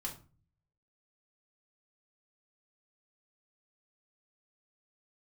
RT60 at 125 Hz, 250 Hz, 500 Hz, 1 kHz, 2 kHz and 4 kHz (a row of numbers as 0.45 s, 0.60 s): 0.90 s, 0.60 s, 0.35 s, 0.35 s, 0.30 s, 0.25 s